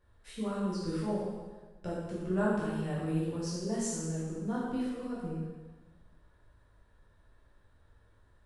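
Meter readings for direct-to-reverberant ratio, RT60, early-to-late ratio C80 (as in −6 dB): −8.5 dB, 1.3 s, 1.5 dB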